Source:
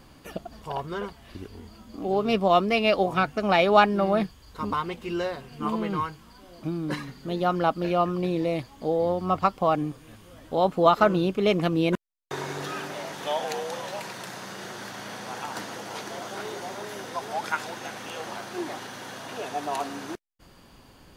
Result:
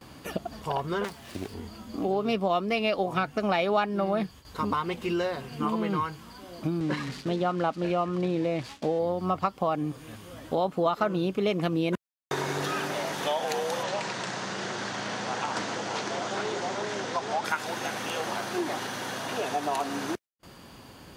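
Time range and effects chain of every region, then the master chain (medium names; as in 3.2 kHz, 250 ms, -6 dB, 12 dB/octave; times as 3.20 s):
1.04–1.54 s: self-modulated delay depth 0.47 ms + high-pass 84 Hz + treble shelf 6.4 kHz +6 dB
6.80–8.99 s: zero-crossing glitches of -27 dBFS + low-pass 3.7 kHz + gate with hold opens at -31 dBFS, closes at -40 dBFS
13.83–17.45 s: steep low-pass 8.1 kHz + loudspeaker Doppler distortion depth 0.17 ms
whole clip: high-pass 69 Hz 12 dB/octave; gate with hold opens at -44 dBFS; compression 3:1, threshold -31 dBFS; trim +5 dB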